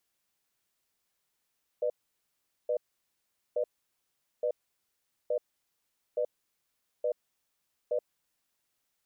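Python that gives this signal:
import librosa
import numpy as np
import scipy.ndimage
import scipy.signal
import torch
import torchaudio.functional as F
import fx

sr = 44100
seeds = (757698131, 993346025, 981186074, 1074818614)

y = fx.cadence(sr, length_s=6.18, low_hz=493.0, high_hz=604.0, on_s=0.08, off_s=0.79, level_db=-29.0)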